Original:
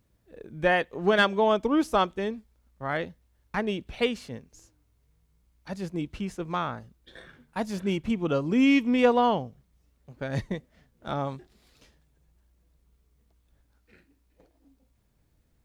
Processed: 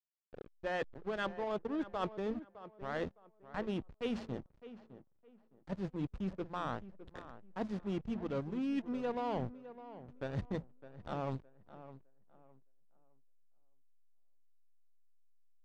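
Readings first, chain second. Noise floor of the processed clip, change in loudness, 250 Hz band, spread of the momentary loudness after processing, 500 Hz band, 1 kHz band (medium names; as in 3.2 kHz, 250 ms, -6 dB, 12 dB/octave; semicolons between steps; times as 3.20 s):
-70 dBFS, -13.0 dB, -12.0 dB, 17 LU, -12.5 dB, -13.5 dB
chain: band-stop 2.2 kHz, Q 7.6; de-hum 56.96 Hz, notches 4; reverse; compression 8:1, threshold -35 dBFS, peak gain reduction 19 dB; reverse; hysteresis with a dead band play -37.5 dBFS; distance through air 82 m; on a send: tape echo 611 ms, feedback 29%, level -13 dB, low-pass 1.9 kHz; on the sum: trim +2 dB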